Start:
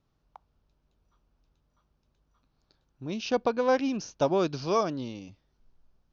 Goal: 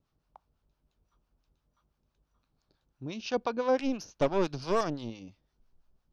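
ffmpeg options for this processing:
ffmpeg -i in.wav -filter_complex "[0:a]acrossover=split=760[link_01][link_02];[link_01]aeval=exprs='val(0)*(1-0.7/2+0.7/2*cos(2*PI*5.9*n/s))':channel_layout=same[link_03];[link_02]aeval=exprs='val(0)*(1-0.7/2-0.7/2*cos(2*PI*5.9*n/s))':channel_layout=same[link_04];[link_03][link_04]amix=inputs=2:normalize=0,asettb=1/sr,asplit=3[link_05][link_06][link_07];[link_05]atrim=end=3.794[link_08];[link_06]atrim=start=3.79:end=5.1,asetpts=PTS-STARTPTS,afade=type=in:duration=0.004:curve=qsin,afade=type=out:start_time=1.306:duration=0.004:curve=qsin,aeval=exprs='0.158*(cos(1*acos(clip(val(0)/0.158,-1,1)))-cos(1*PI/2))+0.0224*(cos(6*acos(clip(val(0)/0.158,-1,1)))-cos(6*PI/2))+0.00316*(cos(8*acos(clip(val(0)/0.158,-1,1)))-cos(8*PI/2))':channel_layout=same[link_09];[link_07]atrim=start=5.096[link_10];[link_08][link_09]acrossfade=duration=0.004:curve1=hsin:curve2=qsin[link_11];[link_11][link_10]acrossfade=duration=0.004:curve1=qsin:curve2=hsin" out.wav

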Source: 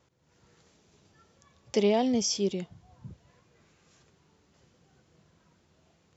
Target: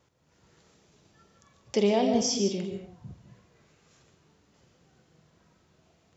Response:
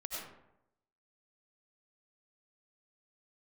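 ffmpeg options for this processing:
-filter_complex "[0:a]asplit=2[link_01][link_02];[1:a]atrim=start_sample=2205,afade=type=out:start_time=0.34:duration=0.01,atrim=end_sample=15435,adelay=45[link_03];[link_02][link_03]afir=irnorm=-1:irlink=0,volume=-5dB[link_04];[link_01][link_04]amix=inputs=2:normalize=0"

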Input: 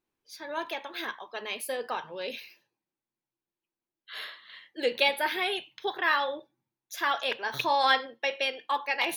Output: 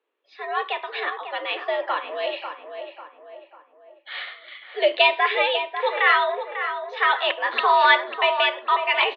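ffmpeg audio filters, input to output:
ffmpeg -i in.wav -filter_complex "[0:a]asetrate=45392,aresample=44100,atempo=0.971532,asplit=2[link_01][link_02];[link_02]adelay=545,lowpass=frequency=1800:poles=1,volume=-7.5dB,asplit=2[link_03][link_04];[link_04]adelay=545,lowpass=frequency=1800:poles=1,volume=0.46,asplit=2[link_05][link_06];[link_06]adelay=545,lowpass=frequency=1800:poles=1,volume=0.46,asplit=2[link_07][link_08];[link_08]adelay=545,lowpass=frequency=1800:poles=1,volume=0.46,asplit=2[link_09][link_10];[link_10]adelay=545,lowpass=frequency=1800:poles=1,volume=0.46[link_11];[link_01][link_03][link_05][link_07][link_09][link_11]amix=inputs=6:normalize=0,highpass=frequency=210:width_type=q:width=0.5412,highpass=frequency=210:width_type=q:width=1.307,lowpass=frequency=3400:width_type=q:width=0.5176,lowpass=frequency=3400:width_type=q:width=0.7071,lowpass=frequency=3400:width_type=q:width=1.932,afreqshift=97,volume=8dB" out.wav

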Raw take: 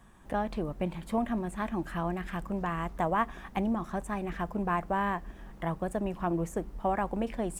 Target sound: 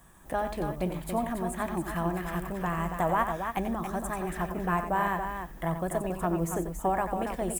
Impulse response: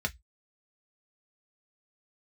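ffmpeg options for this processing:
-filter_complex "[0:a]aemphasis=mode=production:type=50fm,aecho=1:1:90.38|279.9:0.355|0.447,asplit=2[link_01][link_02];[1:a]atrim=start_sample=2205[link_03];[link_02][link_03]afir=irnorm=-1:irlink=0,volume=-15dB[link_04];[link_01][link_04]amix=inputs=2:normalize=0"

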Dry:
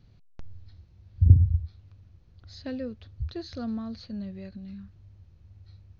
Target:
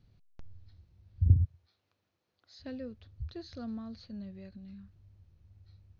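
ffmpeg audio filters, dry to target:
ffmpeg -i in.wav -filter_complex "[0:a]asplit=3[link_01][link_02][link_03];[link_01]afade=type=out:start_time=1.44:duration=0.02[link_04];[link_02]highpass=440,afade=type=in:start_time=1.44:duration=0.02,afade=type=out:start_time=2.59:duration=0.02[link_05];[link_03]afade=type=in:start_time=2.59:duration=0.02[link_06];[link_04][link_05][link_06]amix=inputs=3:normalize=0,volume=-7dB" out.wav

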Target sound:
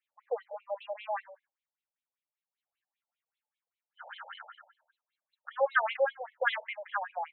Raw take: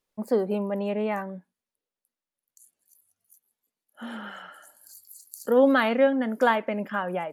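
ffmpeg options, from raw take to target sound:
ffmpeg -i in.wav -af "equalizer=frequency=500:width=1.5:gain=-8.5,afftfilt=real='re*between(b*sr/1024,610*pow(3000/610,0.5+0.5*sin(2*PI*5.1*pts/sr))/1.41,610*pow(3000/610,0.5+0.5*sin(2*PI*5.1*pts/sr))*1.41)':imag='im*between(b*sr/1024,610*pow(3000/610,0.5+0.5*sin(2*PI*5.1*pts/sr))/1.41,610*pow(3000/610,0.5+0.5*sin(2*PI*5.1*pts/sr))*1.41)':win_size=1024:overlap=0.75,volume=2dB" out.wav

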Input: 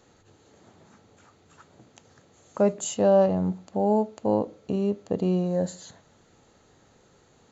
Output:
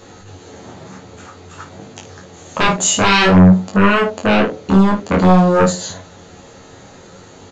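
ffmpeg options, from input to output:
ffmpeg -i in.wav -af "aresample=16000,aeval=exprs='0.316*sin(PI/2*5.01*val(0)/0.316)':channel_layout=same,aresample=44100,flanger=delay=20:depth=6:speed=0.53,aecho=1:1:11|53:0.596|0.316,volume=2.5dB" out.wav

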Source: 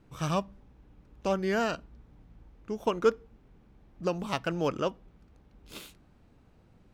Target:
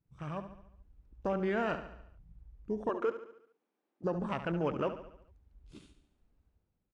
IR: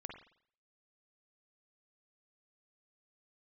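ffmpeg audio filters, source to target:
-filter_complex "[0:a]asettb=1/sr,asplit=3[link_01][link_02][link_03];[link_01]atrim=end=2.894[link_04];[link_02]atrim=start=2.89:end=4.04,asetpts=PTS-STARTPTS,afade=type=in:duration=0.004:curve=qsin,afade=type=out:start_time=1.146:duration=0.004:curve=qsin,highpass=frequency=310:width=0.5412,highpass=frequency=310:width=1.3066[link_05];[link_03]atrim=start=4.036[link_06];[link_04][link_05]acrossfade=duration=0.004:curve1=hsin:curve2=qsin[link_07];[link_07][link_06]acrossfade=duration=0.004:curve1=qsin:curve2=hsin,afwtdn=0.01,alimiter=limit=-22.5dB:level=0:latency=1:release=20,dynaudnorm=framelen=120:gausssize=9:maxgain=8.5dB,asplit=2[link_08][link_09];[link_09]aecho=0:1:71|142|213|284|355|426:0.282|0.149|0.0792|0.042|0.0222|0.0118[link_10];[link_08][link_10]amix=inputs=2:normalize=0,aresample=22050,aresample=44100,volume=-9dB"

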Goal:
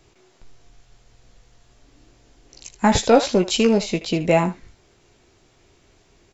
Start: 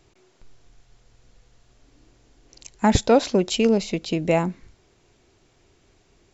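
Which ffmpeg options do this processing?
ffmpeg -i in.wav -filter_complex "[0:a]acrossover=split=470[link_01][link_02];[link_01]asoftclip=type=hard:threshold=-16.5dB[link_03];[link_02]aecho=1:1:17|78:0.562|0.266[link_04];[link_03][link_04]amix=inputs=2:normalize=0,volume=2.5dB" out.wav

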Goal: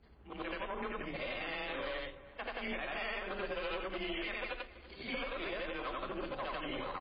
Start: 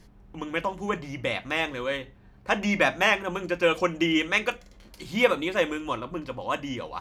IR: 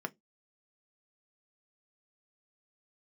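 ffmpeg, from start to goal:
-filter_complex "[0:a]afftfilt=real='re':imag='-im':win_size=8192:overlap=0.75,acompressor=threshold=-31dB:ratio=12,aeval=exprs='0.0794*(cos(1*acos(clip(val(0)/0.0794,-1,1)))-cos(1*PI/2))+0.00126*(cos(3*acos(clip(val(0)/0.0794,-1,1)))-cos(3*PI/2))+0.0112*(cos(6*acos(clip(val(0)/0.0794,-1,1)))-cos(6*PI/2))':channel_layout=same,bass=frequency=250:gain=-11,treble=frequency=4000:gain=-5,bandreject=frequency=880:width=12,afreqshift=23,alimiter=level_in=6.5dB:limit=-24dB:level=0:latency=1:release=85,volume=-6.5dB,lowshelf=frequency=100:gain=8.5,asplit=2[link_01][link_02];[link_02]adelay=337,lowpass=frequency=1900:poles=1,volume=-16.5dB,asplit=2[link_03][link_04];[link_04]adelay=337,lowpass=frequency=1900:poles=1,volume=0.3,asplit=2[link_05][link_06];[link_06]adelay=337,lowpass=frequency=1900:poles=1,volume=0.3[link_07];[link_01][link_03][link_05][link_07]amix=inputs=4:normalize=0,aresample=11025,aeval=exprs='clip(val(0),-1,0.015)':channel_layout=same,aresample=44100,volume=2dB" -ar 11025 -c:a libmp3lame -b:a 16k

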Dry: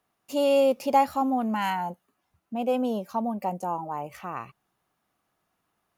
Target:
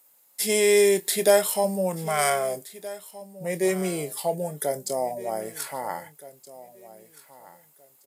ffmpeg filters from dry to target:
ffmpeg -i in.wav -filter_complex "[0:a]highpass=160,aemphasis=mode=production:type=riaa,asplit=2[link_01][link_02];[link_02]adelay=20,volume=-13dB[link_03];[link_01][link_03]amix=inputs=2:normalize=0,aecho=1:1:1164|2328:0.126|0.0277,asetrate=32667,aresample=44100,volume=3dB" out.wav

